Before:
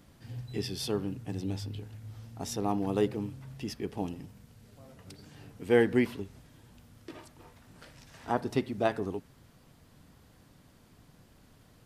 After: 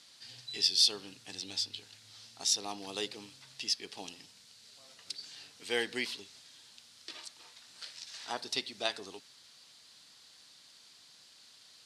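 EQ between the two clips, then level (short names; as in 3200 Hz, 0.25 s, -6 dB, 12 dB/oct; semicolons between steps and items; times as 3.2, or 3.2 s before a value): weighting filter ITU-R 468; dynamic EQ 1400 Hz, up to -4 dB, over -44 dBFS, Q 0.87; bell 4200 Hz +10 dB 0.8 oct; -4.5 dB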